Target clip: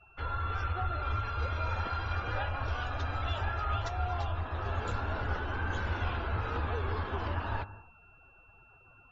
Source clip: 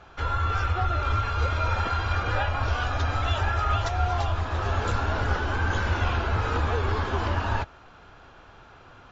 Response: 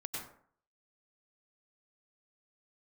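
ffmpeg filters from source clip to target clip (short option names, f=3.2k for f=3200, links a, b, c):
-filter_complex "[0:a]asplit=2[a][b];[1:a]atrim=start_sample=2205,lowpass=6k,adelay=58[c];[b][c]afir=irnorm=-1:irlink=0,volume=-15dB[d];[a][d]amix=inputs=2:normalize=0,aeval=exprs='val(0)+0.00282*sin(2*PI*2700*n/s)':c=same,afftdn=nr=21:nf=-45,volume=-8dB"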